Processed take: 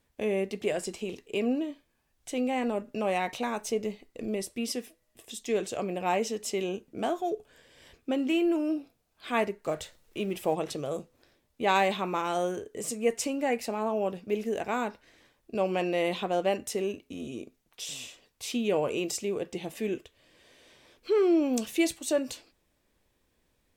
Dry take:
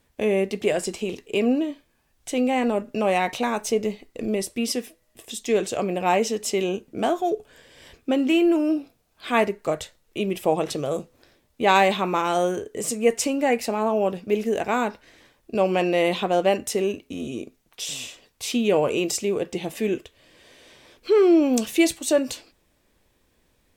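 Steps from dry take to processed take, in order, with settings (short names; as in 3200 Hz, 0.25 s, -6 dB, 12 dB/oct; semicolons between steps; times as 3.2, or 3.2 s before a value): 9.66–10.55 G.711 law mismatch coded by mu; gain -7 dB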